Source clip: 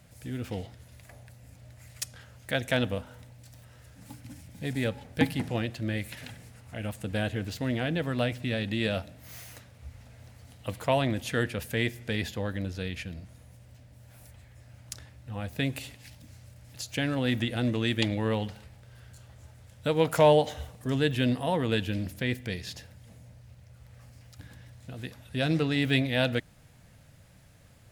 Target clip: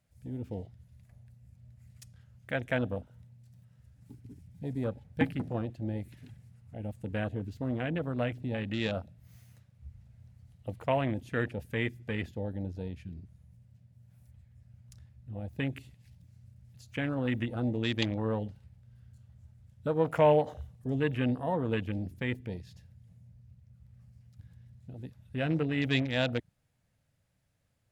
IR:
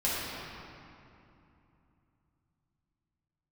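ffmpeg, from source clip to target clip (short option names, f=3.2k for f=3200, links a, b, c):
-af "afwtdn=0.0178,volume=-3dB"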